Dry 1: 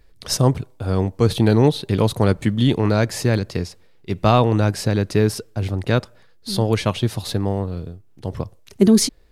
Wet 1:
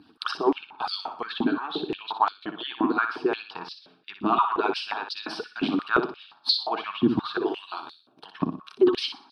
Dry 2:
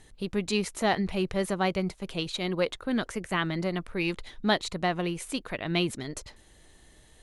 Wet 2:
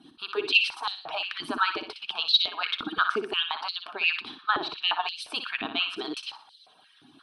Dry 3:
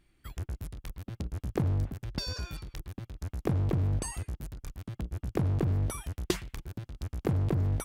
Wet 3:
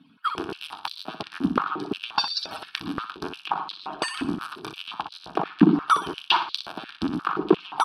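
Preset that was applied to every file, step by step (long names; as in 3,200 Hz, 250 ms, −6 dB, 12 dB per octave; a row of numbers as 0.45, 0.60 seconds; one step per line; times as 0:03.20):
harmonic-percussive split with one part muted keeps percussive
treble cut that deepens with the level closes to 2,000 Hz, closed at −24 dBFS
reversed playback
downward compressor 6 to 1, threshold −31 dBFS
reversed playback
high-frequency loss of the air 68 metres
phaser with its sweep stopped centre 2,000 Hz, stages 6
on a send: flutter between parallel walls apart 10.4 metres, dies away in 0.42 s
on the sum: rectangular room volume 3,500 cubic metres, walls furnished, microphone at 0.56 metres
high-pass on a step sequencer 5.7 Hz 270–4,100 Hz
loudness normalisation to −27 LKFS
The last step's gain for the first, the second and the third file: +12.5, +10.0, +20.0 decibels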